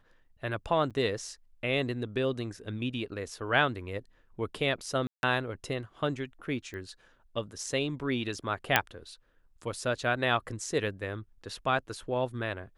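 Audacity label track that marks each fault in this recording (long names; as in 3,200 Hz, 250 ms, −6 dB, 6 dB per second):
0.900000	0.910000	drop-out 6.7 ms
5.070000	5.230000	drop-out 161 ms
6.740000	6.740000	click −30 dBFS
8.760000	8.760000	click −6 dBFS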